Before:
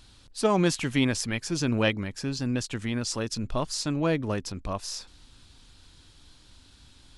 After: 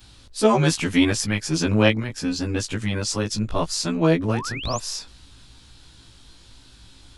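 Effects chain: short-time reversal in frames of 37 ms; painted sound rise, 4.33–4.8, 660–7700 Hz -42 dBFS; gain +8.5 dB

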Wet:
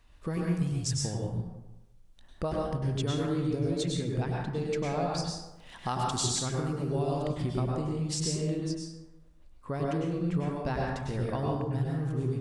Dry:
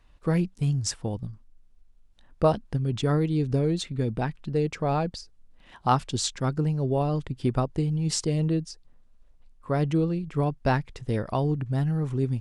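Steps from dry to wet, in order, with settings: high shelf 3800 Hz +5.5 dB, from 5.18 s +12 dB, from 7.33 s +3 dB; compressor 2.5:1, threshold -32 dBFS, peak gain reduction 11.5 dB; plate-style reverb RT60 1 s, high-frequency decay 0.5×, pre-delay 90 ms, DRR -2.5 dB; gain -2 dB

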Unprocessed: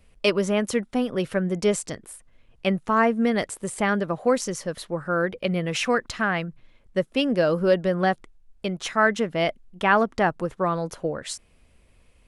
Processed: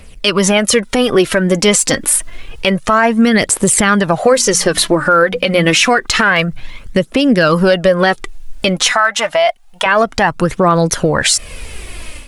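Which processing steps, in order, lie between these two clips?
8.92–9.86 resonant low shelf 500 Hz -12.5 dB, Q 3; phaser 0.28 Hz, delay 4.1 ms, feedback 49%; AGC gain up to 13 dB; 4.24–5.88 notches 60/120/180/240/300 Hz; compressor 3:1, threshold -24 dBFS, peak gain reduction 13 dB; tilt shelf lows -4 dB, about 1400 Hz; maximiser +18.5 dB; gain -1 dB

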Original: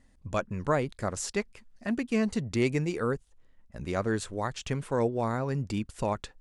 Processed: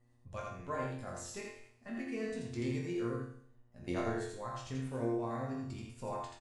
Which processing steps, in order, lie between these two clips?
bin magnitudes rounded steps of 15 dB; 3.82–4.35 transient shaper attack +12 dB, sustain -2 dB; resonator bank F2 sus4, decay 0.65 s; on a send: echo 83 ms -3 dB; on the sum: buzz 120 Hz, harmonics 10, -76 dBFS -8 dB/oct; gain +5 dB

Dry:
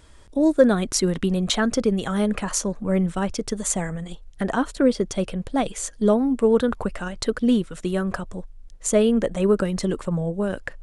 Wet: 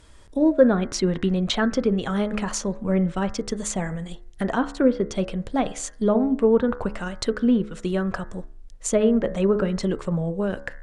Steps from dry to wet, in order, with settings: de-hum 70.17 Hz, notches 30; treble ducked by the level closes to 2000 Hz, closed at -15 dBFS

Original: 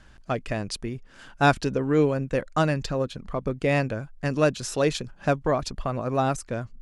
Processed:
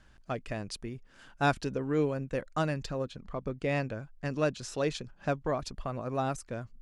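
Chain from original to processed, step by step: 3.08–5.46 LPF 8200 Hz 12 dB/oct; gain -7.5 dB

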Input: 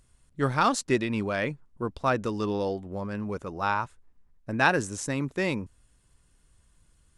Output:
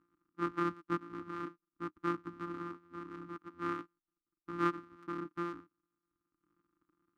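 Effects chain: sample sorter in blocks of 256 samples; reverb removal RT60 1.2 s; double band-pass 620 Hz, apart 2 oct; gain +2 dB

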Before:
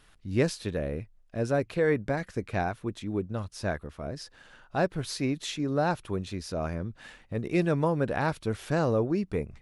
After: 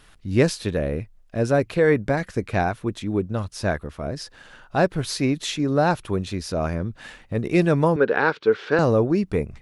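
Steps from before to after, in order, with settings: 7.96–8.79 speaker cabinet 280–4600 Hz, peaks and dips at 440 Hz +10 dB, 650 Hz -7 dB, 1500 Hz +7 dB; gain +7 dB

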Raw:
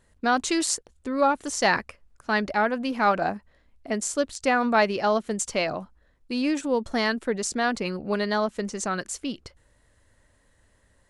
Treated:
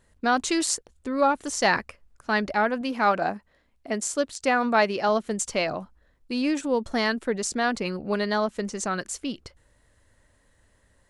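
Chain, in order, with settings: 2.81–5.09 low shelf 85 Hz -10.5 dB

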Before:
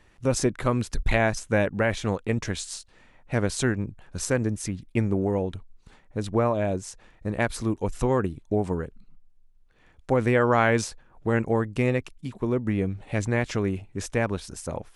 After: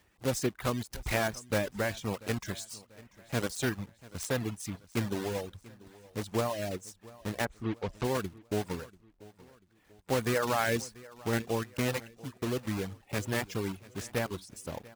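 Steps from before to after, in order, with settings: block floating point 3-bit; 7.44–8.03 LPF 1900 Hz -> 4700 Hz 12 dB/oct; reverb removal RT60 0.81 s; HPF 48 Hz; feedback echo 0.689 s, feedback 42%, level -21 dB; gain -7 dB

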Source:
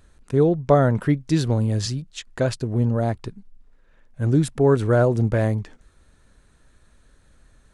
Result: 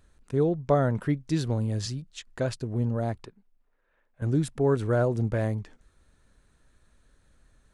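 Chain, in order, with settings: 3.25–4.22 three-band isolator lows -13 dB, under 360 Hz, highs -13 dB, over 3100 Hz; gain -6.5 dB

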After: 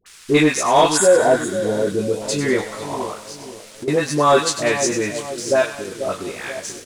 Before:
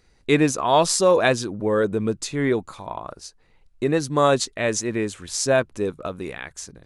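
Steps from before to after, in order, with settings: low shelf 150 Hz -11 dB; doubler 20 ms -4.5 dB; 0.93–1.8 spectral repair 760–6500 Hz after; 5.17–5.96 level quantiser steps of 17 dB; on a send: split-band echo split 900 Hz, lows 0.488 s, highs 98 ms, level -10 dB; on the sum: band noise 1200–10000 Hz -45 dBFS; dispersion highs, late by 63 ms, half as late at 920 Hz; sample leveller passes 1; 1.44–2.22 bell 1400 Hz -10 dB 1.4 oct; 3.18–3.88 compressor 6:1, threshold -30 dBFS, peak gain reduction 15 dB

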